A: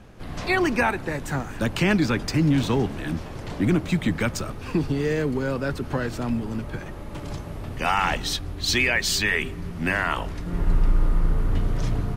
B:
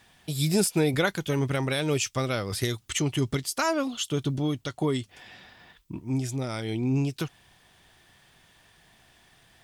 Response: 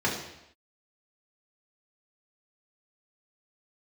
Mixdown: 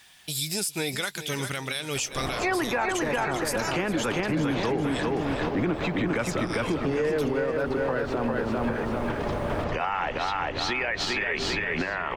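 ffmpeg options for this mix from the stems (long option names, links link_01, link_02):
-filter_complex "[0:a]firequalizer=gain_entry='entry(140,0);entry(470,12);entry(11000,-18)':delay=0.05:min_phase=1,adelay=1950,volume=-0.5dB,asplit=2[link_01][link_02];[link_02]volume=-4dB[link_03];[1:a]tiltshelf=frequency=1100:gain=-7.5,volume=1dB,asplit=2[link_04][link_05];[link_05]volume=-14dB[link_06];[link_03][link_06]amix=inputs=2:normalize=0,aecho=0:1:399|798|1197|1596|1995|2394:1|0.43|0.185|0.0795|0.0342|0.0147[link_07];[link_01][link_04][link_07]amix=inputs=3:normalize=0,alimiter=limit=-18dB:level=0:latency=1:release=205"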